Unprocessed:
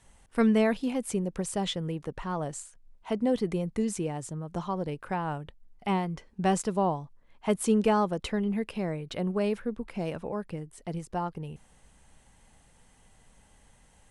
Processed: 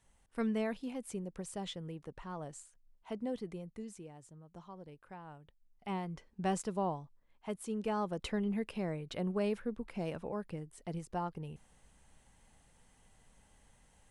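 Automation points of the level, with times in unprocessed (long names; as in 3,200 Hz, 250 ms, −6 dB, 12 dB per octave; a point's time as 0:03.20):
0:03.19 −11 dB
0:04.08 −18.5 dB
0:05.37 −18.5 dB
0:06.11 −8 dB
0:06.98 −8 dB
0:07.69 −15 dB
0:08.24 −5.5 dB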